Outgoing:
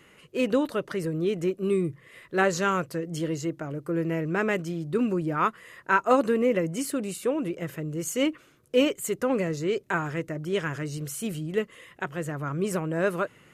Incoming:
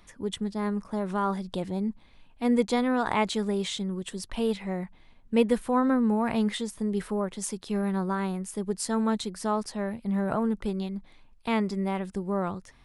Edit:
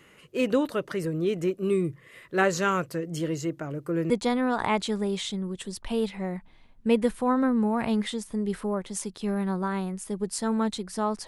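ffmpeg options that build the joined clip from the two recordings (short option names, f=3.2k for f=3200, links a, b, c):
-filter_complex "[0:a]apad=whole_dur=11.27,atrim=end=11.27,atrim=end=4.102[a];[1:a]atrim=start=2.568:end=9.74[b];[a][b]acrossfade=d=0.004:c1=hsin:c2=hsin"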